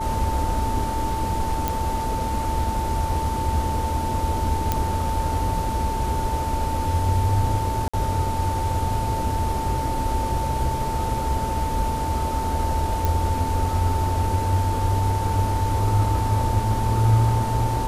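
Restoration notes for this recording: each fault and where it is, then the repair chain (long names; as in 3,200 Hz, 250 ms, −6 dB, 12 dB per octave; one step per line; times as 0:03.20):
whistle 890 Hz −26 dBFS
0:01.68: click
0:04.72: click −7 dBFS
0:07.88–0:07.93: drop-out 55 ms
0:13.05: click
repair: click removal
notch filter 890 Hz, Q 30
repair the gap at 0:07.88, 55 ms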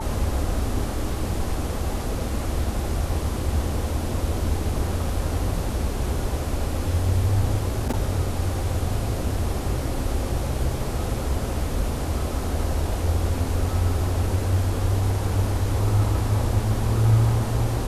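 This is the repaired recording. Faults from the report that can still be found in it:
none of them is left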